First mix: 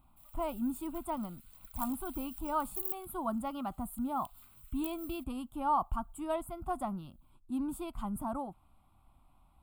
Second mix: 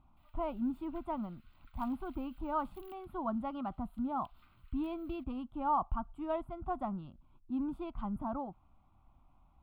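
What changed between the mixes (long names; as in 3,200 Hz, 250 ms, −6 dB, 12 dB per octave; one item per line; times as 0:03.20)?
background +4.5 dB
master: add high-frequency loss of the air 330 metres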